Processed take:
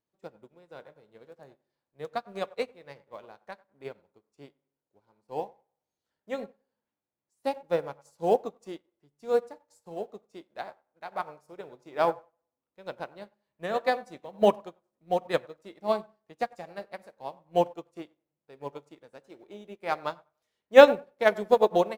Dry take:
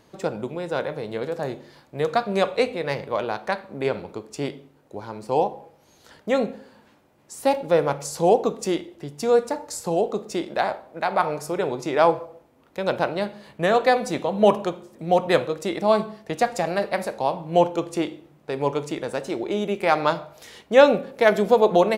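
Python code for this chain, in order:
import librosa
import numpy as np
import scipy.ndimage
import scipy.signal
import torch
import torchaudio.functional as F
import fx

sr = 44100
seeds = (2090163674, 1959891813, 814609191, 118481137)

p1 = fx.law_mismatch(x, sr, coded='mu')
p2 = p1 + fx.echo_wet_bandpass(p1, sr, ms=96, feedback_pct=43, hz=930.0, wet_db=-9.5, dry=0)
p3 = fx.upward_expand(p2, sr, threshold_db=-37.0, expansion=2.5)
y = p3 * librosa.db_to_amplitude(1.5)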